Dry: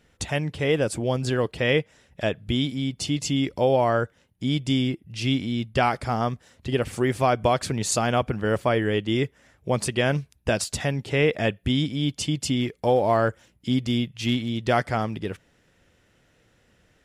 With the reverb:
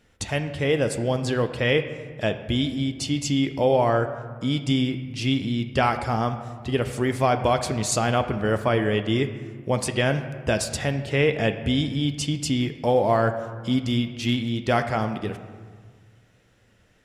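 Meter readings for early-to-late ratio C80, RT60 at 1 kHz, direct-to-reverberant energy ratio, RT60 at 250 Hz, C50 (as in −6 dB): 11.5 dB, 1.7 s, 7.5 dB, 1.9 s, 10.0 dB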